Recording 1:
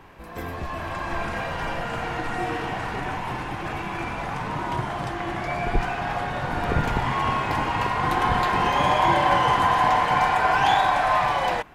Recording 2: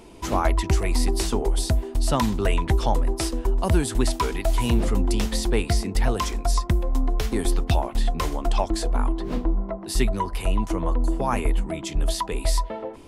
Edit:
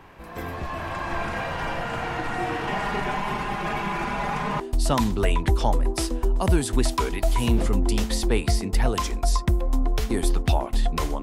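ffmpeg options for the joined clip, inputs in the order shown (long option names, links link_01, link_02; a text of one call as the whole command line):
ffmpeg -i cue0.wav -i cue1.wav -filter_complex "[0:a]asettb=1/sr,asplit=3[link_01][link_02][link_03];[link_01]atrim=end=2.674[link_04];[link_02]atrim=start=2.67:end=4.6,asetpts=PTS-STARTPTS,afade=type=in:duration=0.004:curve=qsin,afade=type=out:start_time=1.926:duration=0.004:curve=qsin,aecho=1:1:4.9:0.97,atrim=end_sample=85113[link_05];[link_03]atrim=start=4.596[link_06];[link_04][link_05]acrossfade=duration=0.004:curve1=hsin:curve2=qsin[link_07];[link_07][link_06]acrossfade=duration=0.004:curve1=qsin:curve2=hsin,apad=whole_dur=11.22,atrim=end=11.22,atrim=end=4.602[link_08];[1:a]atrim=start=1.818:end=8.44[link_09];[link_08][link_09]acrossfade=duration=0.004:curve1=hsin:curve2=hsin" out.wav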